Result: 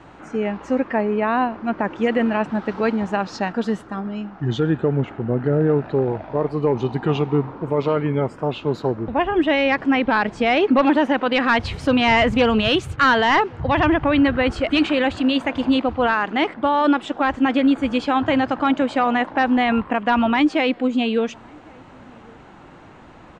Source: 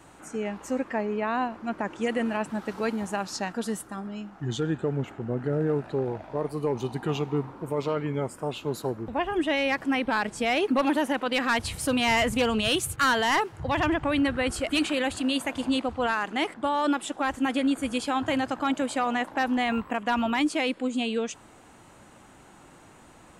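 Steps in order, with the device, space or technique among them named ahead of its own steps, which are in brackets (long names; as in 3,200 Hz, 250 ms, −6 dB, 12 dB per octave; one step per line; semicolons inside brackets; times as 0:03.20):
shout across a valley (high-frequency loss of the air 200 metres; slap from a distant wall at 190 metres, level −28 dB)
level +8.5 dB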